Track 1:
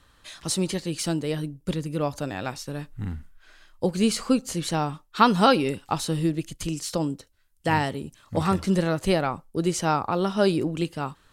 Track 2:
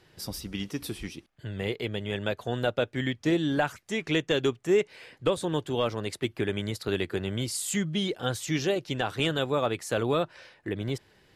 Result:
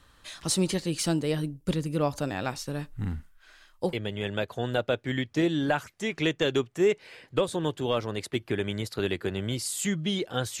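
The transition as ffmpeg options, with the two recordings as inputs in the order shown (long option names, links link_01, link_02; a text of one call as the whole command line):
ffmpeg -i cue0.wav -i cue1.wav -filter_complex "[0:a]asettb=1/sr,asplit=3[link_01][link_02][link_03];[link_01]atrim=end=3.204[link_04];[link_02]atrim=start=3.2:end=3.93,asetpts=PTS-STARTPTS,afade=type=in:duration=0.004:curve=qsin,afade=type=out:start_time=0.726:duration=0.004:curve=qsin,lowshelf=frequency=460:gain=-7[link_05];[link_03]atrim=start=3.926[link_06];[link_04][link_05]acrossfade=duration=0.004:curve1=hsin:curve2=qsin[link_07];[link_07][link_06]acrossfade=duration=0.004:curve1=qsin:curve2=hsin,apad=whole_dur=10.6,atrim=end=10.6,atrim=end=3.932[link_08];[1:a]atrim=start=1.818:end=8.49[link_09];[link_08][link_09]acrossfade=duration=0.004:curve1=hsin:curve2=hsin" out.wav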